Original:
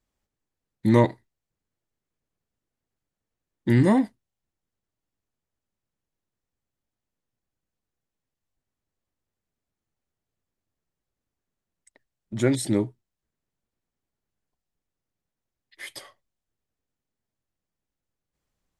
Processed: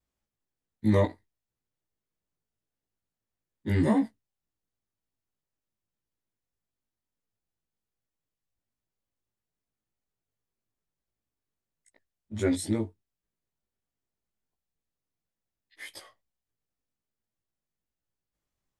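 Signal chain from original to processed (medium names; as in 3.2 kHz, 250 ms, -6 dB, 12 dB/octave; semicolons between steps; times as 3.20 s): short-time spectra conjugated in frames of 37 ms; trim -2 dB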